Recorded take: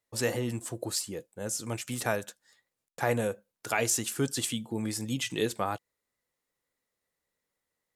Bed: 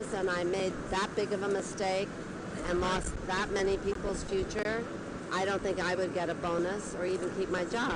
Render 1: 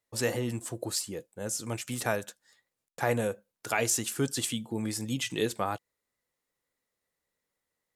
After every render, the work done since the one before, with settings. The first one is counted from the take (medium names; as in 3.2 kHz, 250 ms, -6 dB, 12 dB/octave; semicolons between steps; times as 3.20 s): no audible change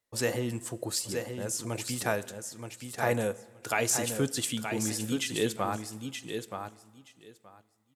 feedback delay 925 ms, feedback 15%, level -7 dB; plate-style reverb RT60 1.5 s, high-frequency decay 0.9×, DRR 19 dB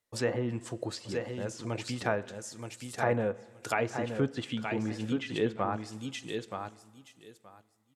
low-pass that closes with the level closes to 1.9 kHz, closed at -26.5 dBFS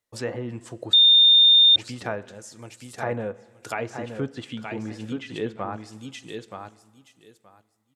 0.93–1.76 s: bleep 3.63 kHz -11 dBFS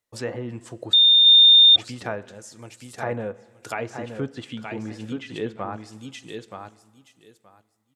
1.26–1.85 s: small resonant body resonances 720/1200/3400 Hz, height 12 dB, ringing for 25 ms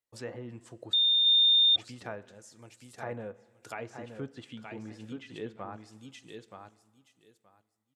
trim -10 dB